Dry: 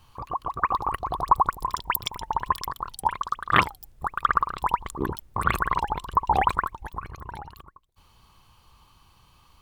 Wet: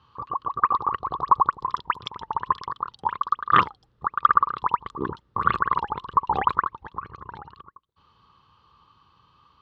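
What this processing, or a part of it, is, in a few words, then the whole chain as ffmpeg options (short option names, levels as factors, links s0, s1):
guitar cabinet: -af "highpass=97,equalizer=f=450:t=q:w=4:g=3,equalizer=f=690:t=q:w=4:g=-8,equalizer=f=1200:t=q:w=4:g=8,equalizer=f=2300:t=q:w=4:g=-8,lowpass=f=4200:w=0.5412,lowpass=f=4200:w=1.3066,volume=0.841"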